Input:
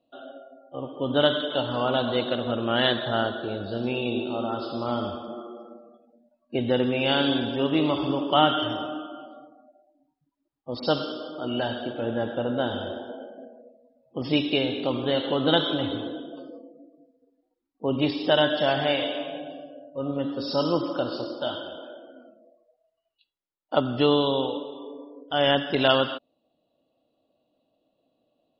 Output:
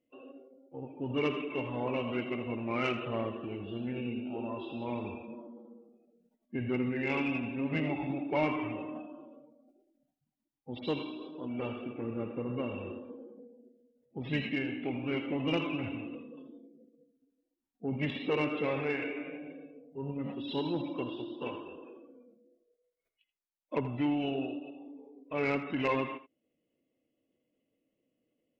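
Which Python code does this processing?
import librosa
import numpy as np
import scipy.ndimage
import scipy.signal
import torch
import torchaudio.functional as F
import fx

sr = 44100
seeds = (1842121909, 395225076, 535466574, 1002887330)

p1 = fx.formant_shift(x, sr, semitones=-5)
p2 = 10.0 ** (-12.5 / 20.0) * np.tanh(p1 / 10.0 ** (-12.5 / 20.0))
p3 = p2 + fx.echo_single(p2, sr, ms=81, db=-14.5, dry=0)
y = p3 * librosa.db_to_amplitude(-8.0)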